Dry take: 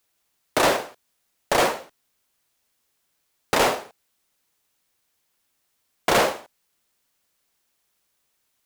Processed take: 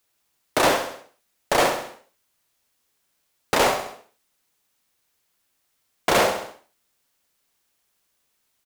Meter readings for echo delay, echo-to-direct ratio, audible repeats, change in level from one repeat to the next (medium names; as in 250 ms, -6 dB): 66 ms, -7.5 dB, 4, -5.5 dB